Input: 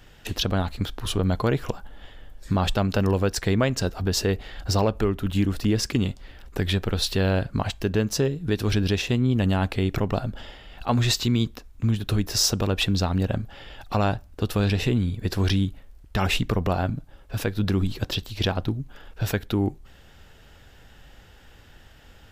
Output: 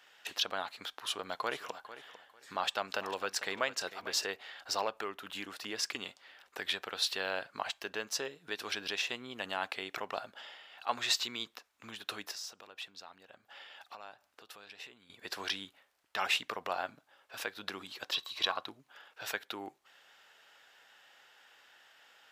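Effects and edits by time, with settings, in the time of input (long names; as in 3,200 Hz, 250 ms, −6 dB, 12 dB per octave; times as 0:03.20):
0:00.74–0:04.26: repeating echo 448 ms, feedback 22%, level −14 dB
0:12.31–0:15.10: downward compressor 3 to 1, threshold −39 dBFS
0:18.14–0:18.66: hollow resonant body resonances 1,100/3,900 Hz, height 15 dB
whole clip: high-pass filter 870 Hz 12 dB per octave; high-shelf EQ 7,000 Hz −7 dB; level −3.5 dB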